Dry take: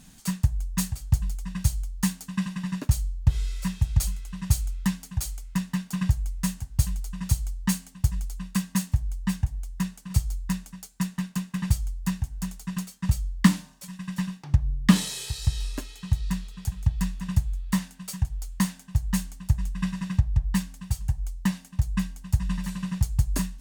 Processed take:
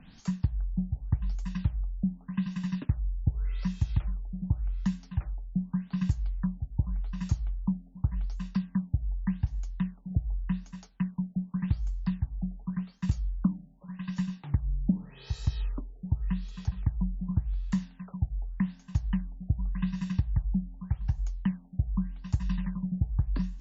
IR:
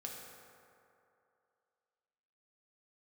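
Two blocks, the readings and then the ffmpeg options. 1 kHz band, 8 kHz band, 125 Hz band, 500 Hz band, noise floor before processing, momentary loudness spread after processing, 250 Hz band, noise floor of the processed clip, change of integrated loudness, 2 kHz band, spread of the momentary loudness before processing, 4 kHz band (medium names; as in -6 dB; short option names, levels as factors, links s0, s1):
-10.0 dB, under -20 dB, -4.0 dB, -6.5 dB, -51 dBFS, 5 LU, -3.5 dB, -54 dBFS, -4.5 dB, -12.0 dB, 7 LU, -15.0 dB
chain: -filter_complex "[0:a]acrossover=split=250|1900[s0][s1][s2];[s0]acompressor=threshold=0.0708:ratio=4[s3];[s1]acompressor=threshold=0.00447:ratio=4[s4];[s2]acompressor=threshold=0.00355:ratio=4[s5];[s3][s4][s5]amix=inputs=3:normalize=0,afftfilt=real='re*lt(b*sr/1024,770*pow(7700/770,0.5+0.5*sin(2*PI*0.86*pts/sr)))':imag='im*lt(b*sr/1024,770*pow(7700/770,0.5+0.5*sin(2*PI*0.86*pts/sr)))':win_size=1024:overlap=0.75"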